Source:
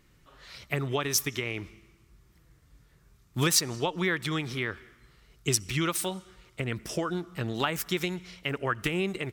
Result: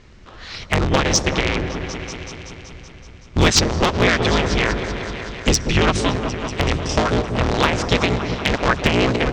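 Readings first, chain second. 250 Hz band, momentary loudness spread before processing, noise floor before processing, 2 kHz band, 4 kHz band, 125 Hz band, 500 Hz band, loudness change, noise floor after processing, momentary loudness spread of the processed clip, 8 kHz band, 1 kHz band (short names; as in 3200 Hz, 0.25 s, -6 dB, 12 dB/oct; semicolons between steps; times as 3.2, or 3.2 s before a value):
+11.5 dB, 13 LU, -62 dBFS, +11.5 dB, +11.0 dB, +12.0 dB, +12.5 dB, +10.5 dB, -41 dBFS, 15 LU, +6.5 dB, +14.0 dB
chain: cycle switcher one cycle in 3, inverted; in parallel at -3 dB: compressor, threshold -36 dBFS, peak gain reduction 16.5 dB; on the sum: inverse Chebyshev low-pass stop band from 11000 Hz, stop band 40 dB; low shelf 130 Hz +3.5 dB; on a send: repeats that get brighter 0.189 s, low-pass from 750 Hz, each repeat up 1 oct, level -6 dB; on the sum: wavefolder -13 dBFS; gain +9 dB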